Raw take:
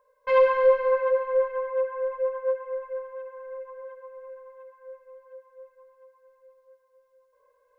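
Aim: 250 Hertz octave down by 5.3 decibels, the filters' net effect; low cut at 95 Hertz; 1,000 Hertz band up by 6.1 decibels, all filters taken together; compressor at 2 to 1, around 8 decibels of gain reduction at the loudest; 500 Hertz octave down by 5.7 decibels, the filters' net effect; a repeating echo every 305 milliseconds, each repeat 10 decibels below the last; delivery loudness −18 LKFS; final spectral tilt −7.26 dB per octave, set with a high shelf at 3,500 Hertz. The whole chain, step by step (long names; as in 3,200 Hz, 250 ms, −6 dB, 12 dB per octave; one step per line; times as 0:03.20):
high-pass filter 95 Hz
parametric band 250 Hz −5.5 dB
parametric band 500 Hz −6.5 dB
parametric band 1,000 Hz +7 dB
high-shelf EQ 3,500 Hz +6.5 dB
downward compressor 2 to 1, threshold −29 dBFS
repeating echo 305 ms, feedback 32%, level −10 dB
level +14 dB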